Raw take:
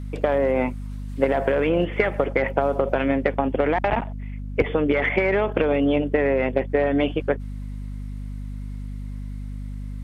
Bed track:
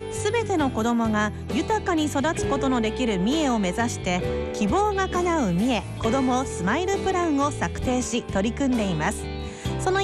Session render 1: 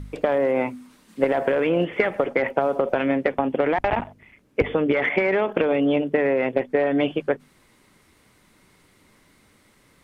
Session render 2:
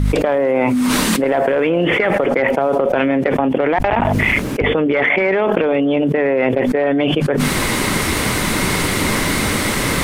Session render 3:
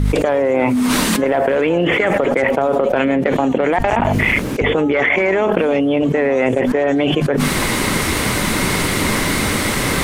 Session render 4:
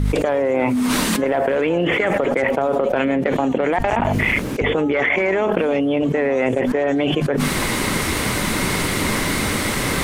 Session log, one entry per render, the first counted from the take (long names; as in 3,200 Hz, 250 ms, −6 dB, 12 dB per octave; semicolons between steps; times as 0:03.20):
hum removal 50 Hz, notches 5
envelope flattener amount 100%
mix in bed track −10.5 dB
level −3 dB